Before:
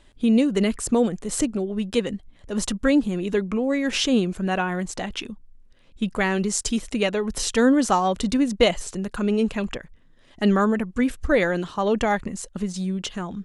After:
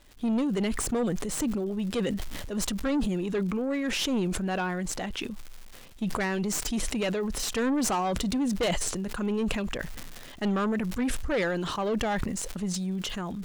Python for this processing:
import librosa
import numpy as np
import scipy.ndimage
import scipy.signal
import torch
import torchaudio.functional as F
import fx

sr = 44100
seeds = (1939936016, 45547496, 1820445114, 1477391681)

y = fx.tracing_dist(x, sr, depth_ms=0.055)
y = fx.dmg_crackle(y, sr, seeds[0], per_s=340.0, level_db=-43.0)
y = 10.0 ** (-18.5 / 20.0) * np.tanh(y / 10.0 ** (-18.5 / 20.0))
y = fx.sustainer(y, sr, db_per_s=23.0)
y = y * 10.0 ** (-4.0 / 20.0)